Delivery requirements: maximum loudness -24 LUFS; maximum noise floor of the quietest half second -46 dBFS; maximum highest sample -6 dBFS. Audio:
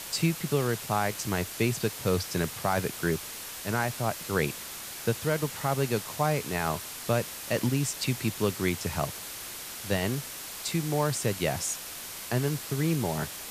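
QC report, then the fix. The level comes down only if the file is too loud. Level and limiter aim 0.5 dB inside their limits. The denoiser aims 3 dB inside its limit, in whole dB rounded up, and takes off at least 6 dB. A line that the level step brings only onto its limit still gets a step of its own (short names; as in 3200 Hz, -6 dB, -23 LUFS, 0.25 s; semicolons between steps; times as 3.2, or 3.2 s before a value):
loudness -30.0 LUFS: OK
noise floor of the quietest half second -40 dBFS: fail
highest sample -13.0 dBFS: OK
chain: denoiser 9 dB, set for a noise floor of -40 dBFS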